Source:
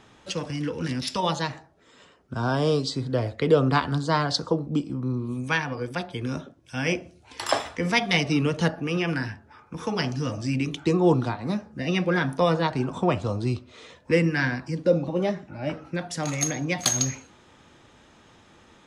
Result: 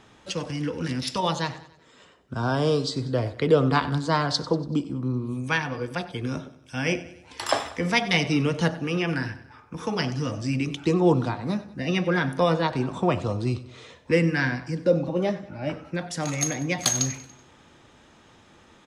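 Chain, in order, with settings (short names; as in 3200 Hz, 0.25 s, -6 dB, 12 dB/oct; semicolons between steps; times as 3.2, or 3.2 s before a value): feedback echo 95 ms, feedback 49%, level -17 dB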